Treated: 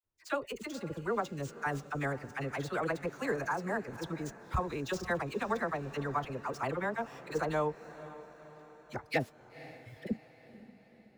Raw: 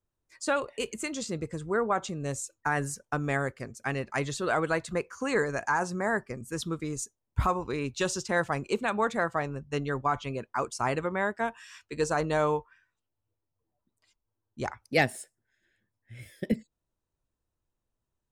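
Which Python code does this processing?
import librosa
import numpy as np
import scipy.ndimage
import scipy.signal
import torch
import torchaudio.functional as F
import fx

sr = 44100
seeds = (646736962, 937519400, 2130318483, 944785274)

y = scipy.ndimage.median_filter(x, 5, mode='constant')
y = fx.dispersion(y, sr, late='lows', ms=70.0, hz=800.0)
y = fx.stretch_vocoder(y, sr, factor=0.61)
y = fx.echo_diffused(y, sr, ms=509, feedback_pct=53, wet_db=-15.5)
y = F.gain(torch.from_numpy(y), -4.5).numpy()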